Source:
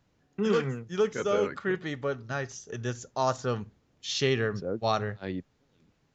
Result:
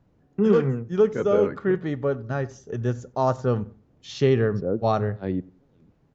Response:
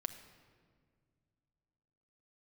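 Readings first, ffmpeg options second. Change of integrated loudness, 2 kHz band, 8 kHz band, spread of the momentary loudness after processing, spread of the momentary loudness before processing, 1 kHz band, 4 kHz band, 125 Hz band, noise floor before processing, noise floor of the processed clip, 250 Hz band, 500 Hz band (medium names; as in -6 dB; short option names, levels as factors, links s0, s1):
+6.0 dB, -1.5 dB, no reading, 10 LU, 11 LU, +3.0 dB, -6.0 dB, +8.5 dB, -70 dBFS, -63 dBFS, +8.0 dB, +6.5 dB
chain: -filter_complex "[0:a]tiltshelf=f=1400:g=8.5,asplit=2[s0][s1];[s1]adelay=93,lowpass=f=2000:p=1,volume=0.0794,asplit=2[s2][s3];[s3]adelay=93,lowpass=f=2000:p=1,volume=0.34[s4];[s0][s2][s4]amix=inputs=3:normalize=0"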